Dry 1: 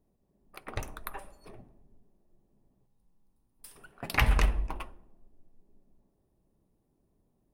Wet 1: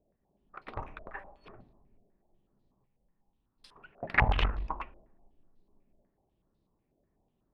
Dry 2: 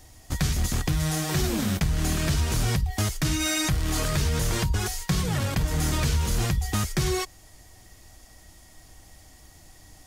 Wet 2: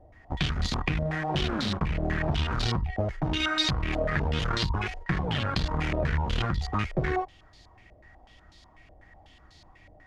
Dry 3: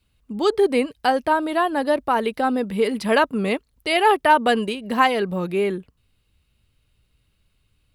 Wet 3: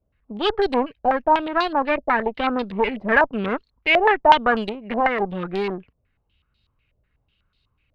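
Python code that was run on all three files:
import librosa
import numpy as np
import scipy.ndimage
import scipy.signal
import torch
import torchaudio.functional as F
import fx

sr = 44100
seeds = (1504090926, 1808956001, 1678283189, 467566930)

y = fx.cheby_harmonics(x, sr, harmonics=(8,), levels_db=(-19,), full_scale_db=-3.5)
y = fx.filter_held_lowpass(y, sr, hz=8.1, low_hz=620.0, high_hz=4100.0)
y = y * 10.0 ** (-4.0 / 20.0)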